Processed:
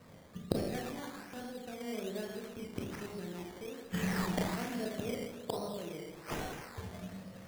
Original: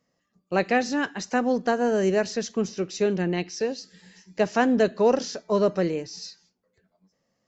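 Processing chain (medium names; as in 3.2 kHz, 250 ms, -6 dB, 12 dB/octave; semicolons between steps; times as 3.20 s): rotary cabinet horn 0.8 Hz, later 5 Hz, at 5.48 s; in parallel at +1.5 dB: compression, threshold -35 dBFS, peak gain reduction 17.5 dB; on the sum: inverted gate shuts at -27 dBFS, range -35 dB; peaking EQ 95 Hz +12.5 dB 0.73 oct; Schroeder reverb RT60 1.4 s, combs from 26 ms, DRR -2.5 dB; decimation with a swept rate 13×, swing 60% 1.2 Hz; trim +11.5 dB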